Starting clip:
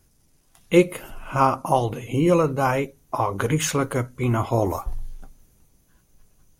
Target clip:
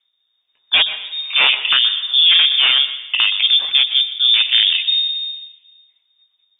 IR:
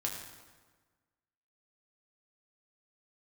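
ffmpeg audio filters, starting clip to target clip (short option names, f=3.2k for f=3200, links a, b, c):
-filter_complex "[0:a]afwtdn=0.0447,aeval=exprs='0.596*sin(PI/2*3.16*val(0)/0.596)':c=same,asplit=2[a][b];[1:a]atrim=start_sample=2205,adelay=122[c];[b][c]afir=irnorm=-1:irlink=0,volume=-14.5dB[d];[a][d]amix=inputs=2:normalize=0,lowpass=f=3.1k:t=q:w=0.5098,lowpass=f=3.1k:t=q:w=0.6013,lowpass=f=3.1k:t=q:w=0.9,lowpass=f=3.1k:t=q:w=2.563,afreqshift=-3700,volume=-4dB"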